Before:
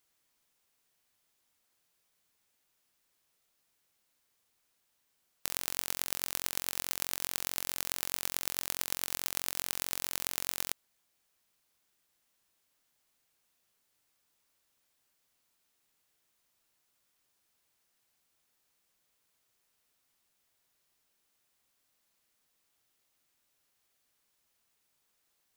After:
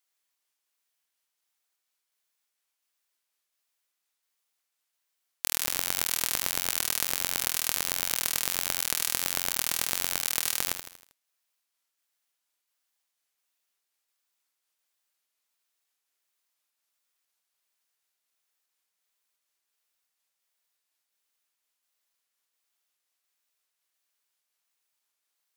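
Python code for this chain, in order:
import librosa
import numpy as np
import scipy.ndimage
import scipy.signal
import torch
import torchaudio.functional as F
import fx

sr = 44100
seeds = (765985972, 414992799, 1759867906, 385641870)

y = fx.pitch_trill(x, sr, semitones=-1.5, every_ms=352)
y = fx.highpass(y, sr, hz=910.0, slope=6)
y = fx.leveller(y, sr, passes=3)
y = fx.echo_feedback(y, sr, ms=79, feedback_pct=48, wet_db=-9.0)
y = y * librosa.db_to_amplitude(2.0)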